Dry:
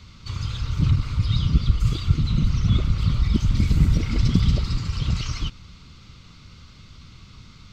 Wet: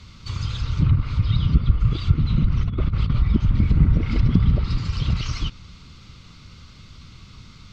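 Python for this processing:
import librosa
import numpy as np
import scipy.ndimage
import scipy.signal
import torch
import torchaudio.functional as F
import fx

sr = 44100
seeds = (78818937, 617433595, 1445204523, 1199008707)

y = fx.env_lowpass_down(x, sr, base_hz=1800.0, full_db=-14.0)
y = fx.over_compress(y, sr, threshold_db=-21.0, ratio=-0.5, at=(2.46, 3.19))
y = y * 10.0 ** (1.5 / 20.0)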